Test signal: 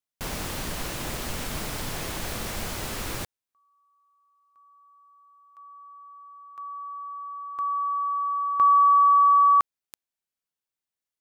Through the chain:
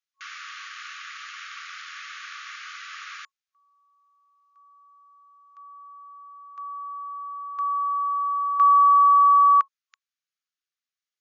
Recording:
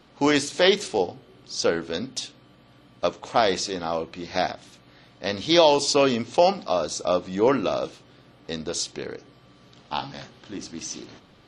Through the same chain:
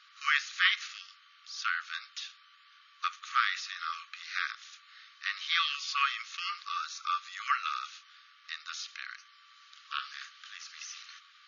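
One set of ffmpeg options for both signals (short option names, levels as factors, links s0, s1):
-filter_complex "[0:a]acrossover=split=2900[s0][s1];[s1]acompressor=threshold=0.00501:ratio=4:attack=1:release=60[s2];[s0][s2]amix=inputs=2:normalize=0,tremolo=f=84:d=0.182,afftfilt=real='re*between(b*sr/4096,1100,7000)':imag='im*between(b*sr/4096,1100,7000)':win_size=4096:overlap=0.75,volume=1.33"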